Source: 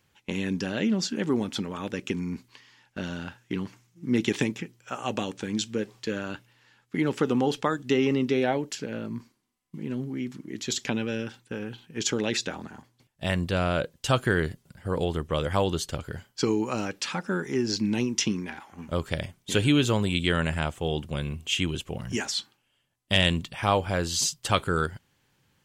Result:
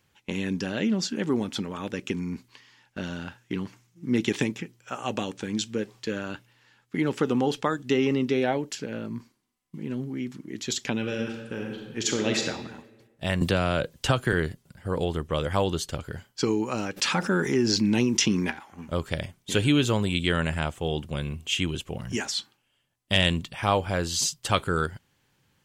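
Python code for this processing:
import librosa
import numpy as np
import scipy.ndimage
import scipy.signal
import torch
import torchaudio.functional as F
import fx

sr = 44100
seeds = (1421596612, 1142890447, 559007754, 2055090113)

y = fx.reverb_throw(x, sr, start_s=10.98, length_s=1.43, rt60_s=1.3, drr_db=2.5)
y = fx.band_squash(y, sr, depth_pct=100, at=(13.41, 14.33))
y = fx.env_flatten(y, sr, amount_pct=50, at=(16.96, 18.5), fade=0.02)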